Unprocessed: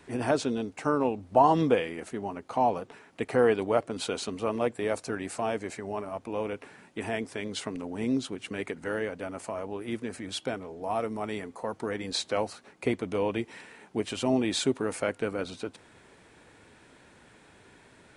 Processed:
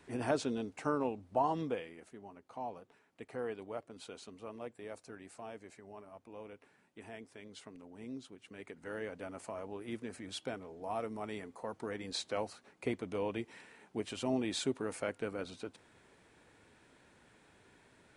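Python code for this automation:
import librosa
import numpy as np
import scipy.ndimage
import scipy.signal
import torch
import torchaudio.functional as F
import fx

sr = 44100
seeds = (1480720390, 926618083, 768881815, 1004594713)

y = fx.gain(x, sr, db=fx.line((0.85, -6.5), (2.18, -17.0), (8.46, -17.0), (9.14, -8.0)))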